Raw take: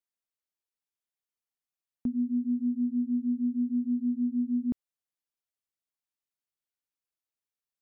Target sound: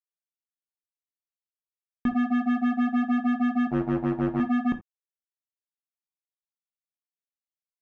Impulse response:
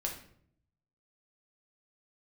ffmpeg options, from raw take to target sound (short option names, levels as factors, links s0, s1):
-filter_complex "[0:a]asplit=3[s0][s1][s2];[s0]afade=t=out:st=3.67:d=0.02[s3];[s1]tremolo=f=100:d=0.824,afade=t=in:st=3.67:d=0.02,afade=t=out:st=4.39:d=0.02[s4];[s2]afade=t=in:st=4.39:d=0.02[s5];[s3][s4][s5]amix=inputs=3:normalize=0,acrusher=bits=4:mix=0:aa=0.5,asplit=2[s6][s7];[1:a]atrim=start_sample=2205,atrim=end_sample=3969[s8];[s7][s8]afir=irnorm=-1:irlink=0,volume=0.794[s9];[s6][s9]amix=inputs=2:normalize=0"